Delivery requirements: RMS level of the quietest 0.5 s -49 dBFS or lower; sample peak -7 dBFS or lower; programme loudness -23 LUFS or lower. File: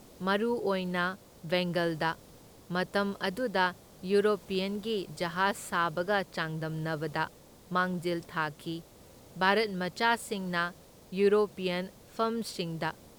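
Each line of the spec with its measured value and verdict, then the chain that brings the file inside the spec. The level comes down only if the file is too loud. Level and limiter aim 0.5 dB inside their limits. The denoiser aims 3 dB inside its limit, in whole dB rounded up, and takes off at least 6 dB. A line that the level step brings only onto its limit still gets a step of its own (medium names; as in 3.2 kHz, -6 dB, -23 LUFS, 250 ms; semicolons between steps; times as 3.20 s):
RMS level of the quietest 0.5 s -54 dBFS: pass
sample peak -10.5 dBFS: pass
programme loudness -31.0 LUFS: pass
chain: none needed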